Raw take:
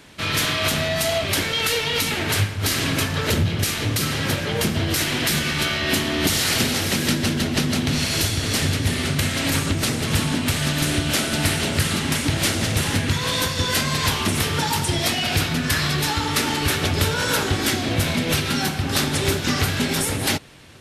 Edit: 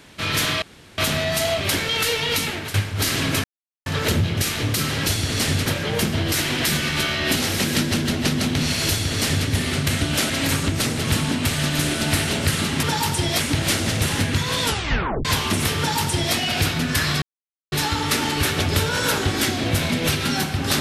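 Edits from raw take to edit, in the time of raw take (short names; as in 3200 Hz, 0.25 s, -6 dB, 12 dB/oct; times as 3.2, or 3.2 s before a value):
0.62 insert room tone 0.36 s
2.04–2.38 fade out, to -14 dB
3.08 insert silence 0.42 s
5.98–6.68 cut
8.2–8.8 copy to 4.28
10.97–11.26 move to 9.33
13.37 tape stop 0.63 s
14.53–15.1 copy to 12.15
15.97 insert silence 0.50 s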